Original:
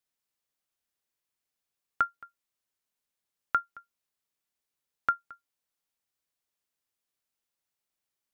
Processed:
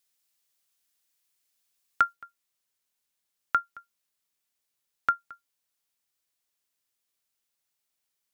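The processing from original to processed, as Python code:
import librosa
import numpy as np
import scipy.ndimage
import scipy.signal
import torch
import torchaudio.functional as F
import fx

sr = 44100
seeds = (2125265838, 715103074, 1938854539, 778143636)

y = fx.high_shelf(x, sr, hz=2000.0, db=fx.steps((0.0, 12.0), (2.12, 6.0)))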